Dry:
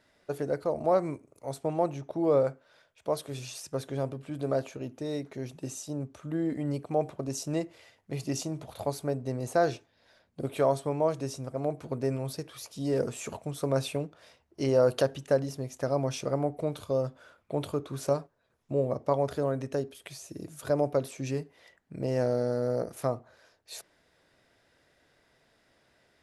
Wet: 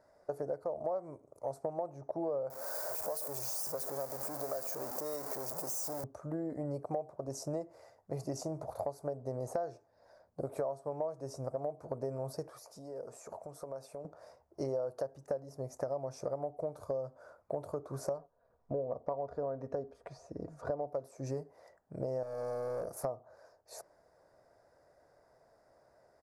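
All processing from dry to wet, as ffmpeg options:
ffmpeg -i in.wav -filter_complex "[0:a]asettb=1/sr,asplit=3[link_01][link_02][link_03];[link_01]atrim=end=2.504[link_04];[link_02]atrim=start=2.5:end=6.04,asetpts=PTS-STARTPTS,afade=type=in:duration=0.004:curve=qsin,afade=type=out:start_time=3.536:duration=0.004:curve=qsin,aeval=exprs='val(0)+0.5*0.0251*sgn(val(0))':channel_layout=same,aemphasis=mode=production:type=riaa,acrossover=split=630|1300[link_05][link_06][link_07];[link_05]acompressor=threshold=-40dB:ratio=4[link_08];[link_06]acompressor=threshold=-47dB:ratio=4[link_09];[link_07]acompressor=threshold=-28dB:ratio=4[link_10];[link_08][link_09][link_10]amix=inputs=3:normalize=0[link_11];[link_03]atrim=start=6.036[link_12];[link_04][link_11]acrossfade=duration=0.004:curve1=hsin:curve2=qsin[link_13];[link_13][link_12]acrossfade=duration=0.004:curve1=qsin:curve2=hsin,asettb=1/sr,asplit=3[link_14][link_15][link_16];[link_14]atrim=end=12.494[link_17];[link_15]atrim=start=12.49:end=14.05,asetpts=PTS-STARTPTS,afade=type=in:duration=0.004:curve=qsin,afade=type=out:start_time=1.556:duration=0.004:curve=qsin,lowshelf=frequency=200:gain=-9.5,acompressor=threshold=-44dB:ratio=5:attack=3.2:release=140:knee=1:detection=peak[link_18];[link_16]atrim=start=14.046[link_19];[link_17][link_18]acrossfade=duration=0.004:curve1=hsin:curve2=qsin[link_20];[link_20][link_19]acrossfade=duration=0.004:curve1=qsin:curve2=hsin,asettb=1/sr,asplit=3[link_21][link_22][link_23];[link_21]atrim=end=18.184[link_24];[link_22]atrim=start=18.18:end=20.88,asetpts=PTS-STARTPTS,afade=type=in:duration=0.004:curve=qsin,afade=type=out:start_time=2.696:duration=0.004:curve=qsin,lowpass=3500,lowshelf=frequency=77:gain=10.5,aecho=1:1:4.2:0.34,atrim=end_sample=119070[link_25];[link_23]atrim=start=20.876[link_26];[link_24][link_25]acrossfade=duration=0.004:curve1=hsin:curve2=qsin[link_27];[link_27][link_26]acrossfade=duration=0.004:curve1=qsin:curve2=hsin,asettb=1/sr,asplit=3[link_28][link_29][link_30];[link_28]atrim=end=22.234[link_31];[link_29]atrim=start=22.23:end=23.05,asetpts=PTS-STARTPTS,afade=type=in:duration=0.004:curve=qsin,afade=type=out:start_time=0.816:duration=0.004:curve=qsin,aemphasis=mode=production:type=cd,volume=34dB,asoftclip=hard,volume=-34dB[link_32];[link_30]atrim=start=23.046[link_33];[link_31][link_32]acrossfade=duration=0.004:curve1=hsin:curve2=qsin[link_34];[link_34][link_33]acrossfade=duration=0.004:curve1=qsin:curve2=hsin,firequalizer=gain_entry='entry(120,0);entry(240,-4);entry(590,10);entry(3100,-24);entry(4800,-4)':delay=0.05:min_phase=1,acompressor=threshold=-31dB:ratio=8,volume=-2.5dB" out.wav

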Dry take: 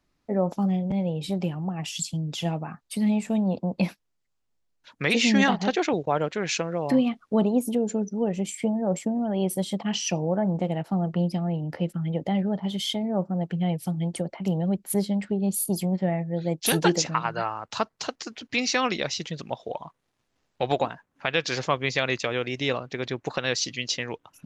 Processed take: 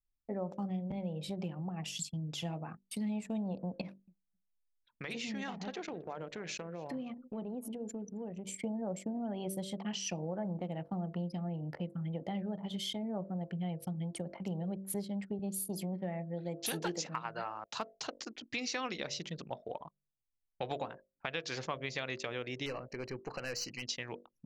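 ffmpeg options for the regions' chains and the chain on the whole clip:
ffmpeg -i in.wav -filter_complex "[0:a]asettb=1/sr,asplit=3[link_01][link_02][link_03];[link_01]atrim=end=3.814[link_04];[link_02]atrim=start=3.81:end=8.5,asetpts=PTS-STARTPTS,afade=type=in:duration=0.004:curve=qsin,afade=type=out:start_time=4.686:duration=0.004:curve=qsin,acompressor=threshold=-33dB:ratio=2.5:attack=3.2:release=140:knee=1:detection=peak,aecho=1:1:266|532:0.126|0.0352,atrim=end_sample=206829[link_05];[link_03]atrim=start=8.496[link_06];[link_04][link_05]acrossfade=duration=0.004:curve1=hsin:curve2=qsin[link_07];[link_07][link_06]acrossfade=duration=0.004:curve1=qsin:curve2=hsin,asettb=1/sr,asplit=3[link_08][link_09][link_10];[link_08]atrim=end=15.394[link_11];[link_09]atrim=start=15.39:end=17.91,asetpts=PTS-STARTPTS,afade=type=in:duration=0.004:curve=qsin,afade=type=out:start_time=2.516:duration=0.004:curve=qsin,highpass=150,volume=12dB,asoftclip=hard,volume=-12dB[link_12];[link_10]atrim=start=17.906[link_13];[link_11][link_12]acrossfade=duration=0.004:curve1=hsin:curve2=qsin[link_14];[link_14][link_13]acrossfade=duration=0.004:curve1=qsin:curve2=hsin,asettb=1/sr,asplit=3[link_15][link_16][link_17];[link_15]atrim=end=22.664[link_18];[link_16]atrim=start=22.66:end=23.83,asetpts=PTS-STARTPTS,afade=type=in:duration=0.004:curve=qsin,afade=type=out:start_time=1.166:duration=0.004:curve=qsin,aeval=exprs='(tanh(14.1*val(0)+0.15)-tanh(0.15))/14.1':channel_layout=same,asuperstop=centerf=3500:order=20:qfactor=3.8[link_19];[link_17]atrim=start=23.826[link_20];[link_18][link_19]acrossfade=duration=0.004:curve1=hsin:curve2=qsin[link_21];[link_21][link_20]acrossfade=duration=0.004:curve1=qsin:curve2=hsin,bandreject=frequency=48.28:width_type=h:width=4,bandreject=frequency=96.56:width_type=h:width=4,bandreject=frequency=144.84:width_type=h:width=4,bandreject=frequency=193.12:width_type=h:width=4,bandreject=frequency=241.4:width_type=h:width=4,bandreject=frequency=289.68:width_type=h:width=4,bandreject=frequency=337.96:width_type=h:width=4,bandreject=frequency=386.24:width_type=h:width=4,bandreject=frequency=434.52:width_type=h:width=4,bandreject=frequency=482.8:width_type=h:width=4,bandreject=frequency=531.08:width_type=h:width=4,bandreject=frequency=579.36:width_type=h:width=4,bandreject=frequency=627.64:width_type=h:width=4,bandreject=frequency=675.92:width_type=h:width=4,anlmdn=0.251,acompressor=threshold=-29dB:ratio=2.5,volume=-7dB" out.wav

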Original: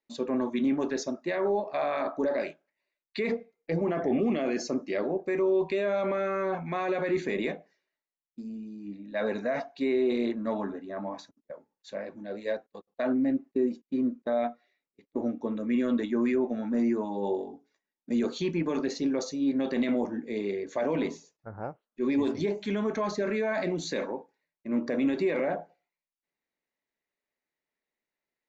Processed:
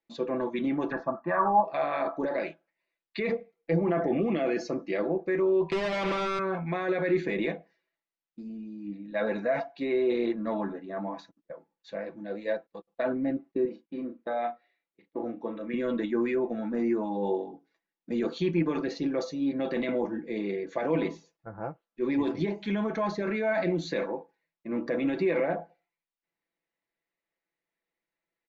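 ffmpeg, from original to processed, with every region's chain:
ffmpeg -i in.wav -filter_complex "[0:a]asettb=1/sr,asplit=3[link_01][link_02][link_03];[link_01]atrim=end=0.924[link_04];[link_02]atrim=start=0.92:end=1.65,asetpts=PTS-STARTPTS,afade=type=in:duration=0.004:curve=qsin,afade=type=out:start_time=0.726:duration=0.004:curve=qsin,lowpass=frequency=1200:width_type=q:width=10,aecho=1:1:1.2:0.62,atrim=end_sample=32193[link_05];[link_03]atrim=start=1.646[link_06];[link_04][link_05]acrossfade=duration=0.004:curve1=hsin:curve2=qsin[link_07];[link_07][link_06]acrossfade=duration=0.004:curve1=qsin:curve2=hsin,asettb=1/sr,asplit=3[link_08][link_09][link_10];[link_08]atrim=end=5.714[link_11];[link_09]atrim=start=5.71:end=6.39,asetpts=PTS-STARTPTS,afade=type=in:duration=0.004:curve=qsin,afade=type=out:start_time=0.676:duration=0.004:curve=qsin,equalizer=frequency=330:width=0.32:gain=4.5,acrusher=bits=3:mix=0:aa=0.5,asoftclip=type=hard:threshold=-22.5dB[link_12];[link_10]atrim=start=6.386[link_13];[link_11][link_12]acrossfade=duration=0.004:curve1=hsin:curve2=qsin[link_14];[link_14][link_13]acrossfade=duration=0.004:curve1=qsin:curve2=hsin,asettb=1/sr,asplit=3[link_15][link_16][link_17];[link_15]atrim=end=13.654[link_18];[link_16]atrim=start=13.65:end=15.74,asetpts=PTS-STARTPTS,afade=type=in:duration=0.004:curve=qsin,afade=type=out:start_time=2.086:duration=0.004:curve=qsin,lowpass=4300,lowshelf=frequency=270:gain=-9.5,asplit=2[link_19][link_20];[link_20]adelay=35,volume=-8dB[link_21];[link_19][link_21]amix=inputs=2:normalize=0,atrim=end_sample=92169[link_22];[link_17]atrim=start=15.736[link_23];[link_18][link_22]acrossfade=duration=0.004:curve1=hsin:curve2=qsin[link_24];[link_24][link_23]acrossfade=duration=0.004:curve1=qsin:curve2=hsin,lowpass=3800,aecho=1:1:6:0.55" out.wav

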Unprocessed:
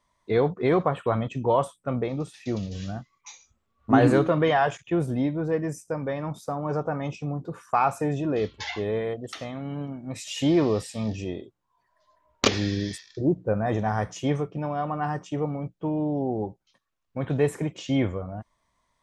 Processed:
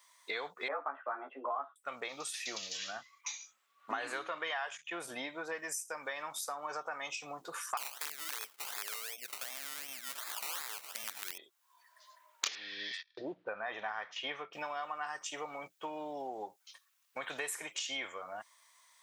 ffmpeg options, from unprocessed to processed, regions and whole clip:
ffmpeg -i in.wav -filter_complex "[0:a]asettb=1/sr,asplit=3[link_01][link_02][link_03];[link_01]atrim=end=0.684[link_04];[link_02]atrim=start=0.68:end=1.76,asetpts=PTS-STARTPTS,afade=type=in:duration=0.004:curve=qsin,afade=type=out:start_time=1.076:duration=0.004:curve=qsin,asplit=2[link_05][link_06];[link_06]adelay=14,volume=-3dB[link_07];[link_05][link_07]amix=inputs=2:normalize=0,atrim=end_sample=47628,afreqshift=130,lowpass=frequency=1500:width=0.5412,lowpass=frequency=1500:width=1.3066[link_08];[link_03]atrim=start=1.756[link_09];[link_04][link_08]acrossfade=duration=0.004:curve1=hsin:curve2=qsin[link_10];[link_10][link_09]acrossfade=duration=0.004:curve1=qsin:curve2=hsin,asettb=1/sr,asplit=3[link_11][link_12][link_13];[link_11]atrim=end=2.774[link_14];[link_12]atrim=start=2.77:end=5.55,asetpts=PTS-STARTPTS,afade=type=in:duration=0.004:curve=qsin,afade=type=out:start_time=2.776:duration=0.004:curve=qsin,highshelf=frequency=5800:gain=-10,bandreject=frequency=50:width_type=h:width=6,bandreject=frequency=100:width_type=h:width=6,bandreject=frequency=150:width_type=h:width=6[link_15];[link_13]atrim=start=5.546[link_16];[link_14][link_15]acrossfade=duration=0.004:curve1=hsin:curve2=qsin[link_17];[link_17][link_16]acrossfade=duration=0.004:curve1=qsin:curve2=hsin,asettb=1/sr,asplit=3[link_18][link_19][link_20];[link_18]atrim=end=7.774[link_21];[link_19]atrim=start=7.77:end=11.38,asetpts=PTS-STARTPTS,afade=type=in:duration=0.004:curve=qsin,afade=type=out:start_time=3.606:duration=0.004:curve=qsin,acrusher=samples=21:mix=1:aa=0.000001:lfo=1:lforange=12.6:lforate=2.7,acompressor=threshold=-31dB:ratio=2:attack=3.2:release=140:knee=1:detection=peak,aeval=exprs='(mod(15.8*val(0)+1,2)-1)/15.8':channel_layout=same[link_22];[link_20]atrim=start=11.376[link_23];[link_21][link_22]acrossfade=duration=0.004:curve1=hsin:curve2=qsin[link_24];[link_24][link_23]acrossfade=duration=0.004:curve1=qsin:curve2=hsin,asettb=1/sr,asplit=3[link_25][link_26][link_27];[link_25]atrim=end=12.554[link_28];[link_26]atrim=start=12.55:end=14.53,asetpts=PTS-STARTPTS,afade=type=in:duration=0.004:curve=qsin,afade=type=out:start_time=1.976:duration=0.004:curve=qsin,lowpass=frequency=3600:width=0.5412,lowpass=frequency=3600:width=1.3066,agate=range=-24dB:threshold=-51dB:ratio=16:release=100:detection=peak[link_29];[link_27]atrim=start=14.526[link_30];[link_28][link_29]acrossfade=duration=0.004:curve1=hsin:curve2=qsin[link_31];[link_31][link_30]acrossfade=duration=0.004:curve1=qsin:curve2=hsin,highpass=1400,highshelf=frequency=7500:gain=11,acompressor=threshold=-48dB:ratio=4,volume=10dB" out.wav

